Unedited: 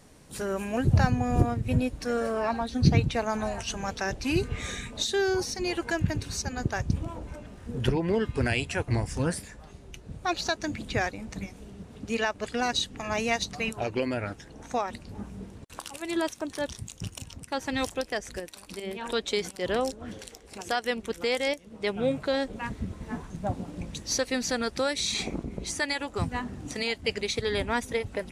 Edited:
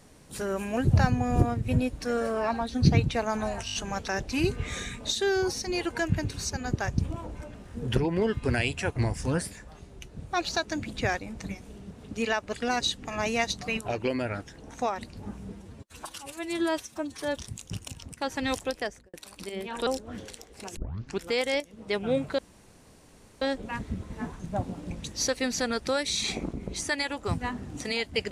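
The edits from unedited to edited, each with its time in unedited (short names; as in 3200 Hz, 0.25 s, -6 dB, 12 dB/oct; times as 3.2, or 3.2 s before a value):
3.66 stutter 0.02 s, 5 plays
15.44–16.67 stretch 1.5×
18.1–18.44 studio fade out
19.17–19.8 cut
20.7 tape start 0.46 s
22.32 insert room tone 1.03 s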